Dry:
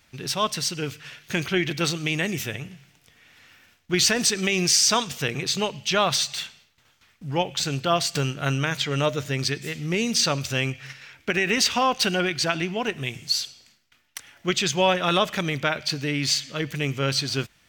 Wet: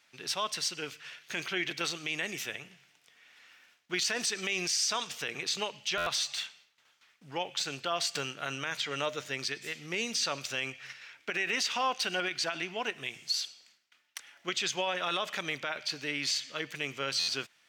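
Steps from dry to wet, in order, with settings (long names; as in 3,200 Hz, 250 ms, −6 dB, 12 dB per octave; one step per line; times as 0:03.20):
meter weighting curve A
brickwall limiter −15 dBFS, peak gain reduction 8.5 dB
buffer that repeats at 0:05.97/0:17.19, samples 512, times 7
level −5.5 dB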